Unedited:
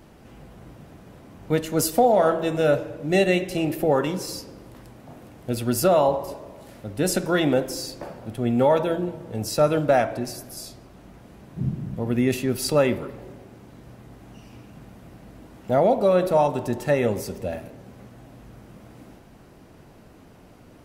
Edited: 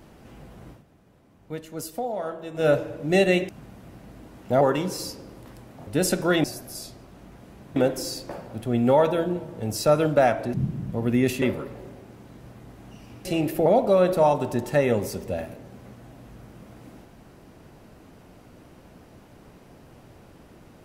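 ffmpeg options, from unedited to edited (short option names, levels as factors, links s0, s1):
-filter_complex "[0:a]asplit=12[s0][s1][s2][s3][s4][s5][s6][s7][s8][s9][s10][s11];[s0]atrim=end=0.83,asetpts=PTS-STARTPTS,afade=t=out:st=0.7:d=0.13:silence=0.251189[s12];[s1]atrim=start=0.83:end=2.54,asetpts=PTS-STARTPTS,volume=0.251[s13];[s2]atrim=start=2.54:end=3.492,asetpts=PTS-STARTPTS,afade=t=in:d=0.13:silence=0.251189[s14];[s3]atrim=start=14.678:end=15.802[s15];[s4]atrim=start=3.898:end=5.162[s16];[s5]atrim=start=6.908:end=7.482[s17];[s6]atrim=start=10.258:end=11.582[s18];[s7]atrim=start=7.478:end=10.262[s19];[s8]atrim=start=11.578:end=12.462[s20];[s9]atrim=start=12.848:end=14.682[s21];[s10]atrim=start=3.488:end=3.902[s22];[s11]atrim=start=15.798[s23];[s12][s13][s14]concat=n=3:v=0:a=1[s24];[s24][s15]acrossfade=d=0.004:c1=hsin:c2=hsin[s25];[s25][s16]acrossfade=d=0.004:c1=hsin:c2=hsin[s26];[s26][s17]acrossfade=d=0.004:c1=hsin:c2=hsin[s27];[s27][s18]acrossfade=d=0.004:c1=hsin:c2=hsin[s28];[s28][s19]acrossfade=d=0.004:c1=hsin:c2=hsin[s29];[s29][s20]acrossfade=d=0.004:c1=hsin:c2=hsin[s30];[s30][s21]acrossfade=d=0.004:c1=hsin:c2=hsin[s31];[s31][s22]acrossfade=d=0.004:c1=hsin:c2=hsin[s32];[s32][s23]acrossfade=d=0.004:c1=hsin:c2=hsin"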